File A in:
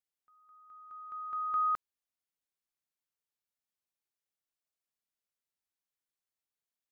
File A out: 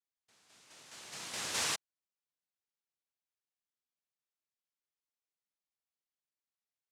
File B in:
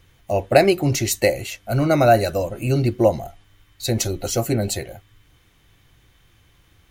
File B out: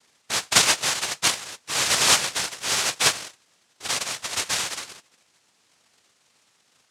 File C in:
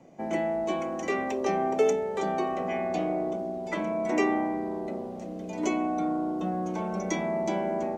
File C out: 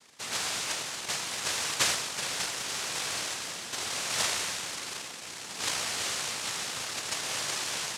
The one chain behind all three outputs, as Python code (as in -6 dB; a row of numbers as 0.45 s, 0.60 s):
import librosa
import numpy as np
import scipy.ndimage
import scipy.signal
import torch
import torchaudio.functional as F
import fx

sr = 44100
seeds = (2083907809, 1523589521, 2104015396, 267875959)

y = fx.noise_vocoder(x, sr, seeds[0], bands=1)
y = fx.dynamic_eq(y, sr, hz=240.0, q=0.97, threshold_db=-44.0, ratio=4.0, max_db=-6)
y = y * 10.0 ** (-4.5 / 20.0)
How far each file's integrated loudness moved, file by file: -2.5 LU, -1.5 LU, -1.5 LU